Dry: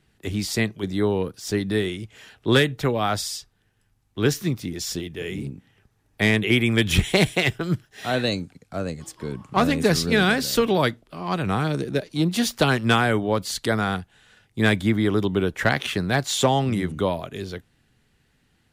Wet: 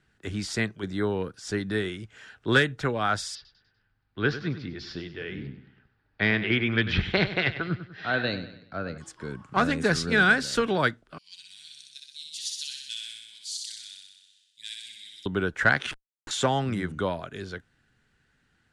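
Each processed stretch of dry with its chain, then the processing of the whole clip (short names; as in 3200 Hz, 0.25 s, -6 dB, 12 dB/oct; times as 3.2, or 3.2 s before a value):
3.35–8.98 elliptic low-pass 4700 Hz, stop band 70 dB + feedback echo 98 ms, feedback 43%, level -12.5 dB
11.18–15.26 inverse Chebyshev high-pass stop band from 1400 Hz, stop band 50 dB + flutter echo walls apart 10.7 m, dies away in 1.2 s
15.91–16.31 spectral contrast raised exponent 1.8 + steep high-pass 2000 Hz 72 dB/oct + Schmitt trigger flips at -27.5 dBFS
whole clip: LPF 9300 Hz 24 dB/oct; bell 1500 Hz +10.5 dB 0.5 oct; gain -5.5 dB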